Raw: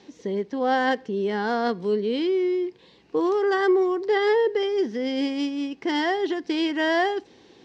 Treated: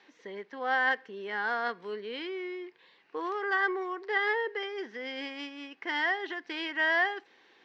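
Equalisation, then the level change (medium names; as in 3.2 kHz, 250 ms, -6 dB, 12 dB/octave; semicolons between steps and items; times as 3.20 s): band-pass filter 1.7 kHz, Q 1.5; +1.5 dB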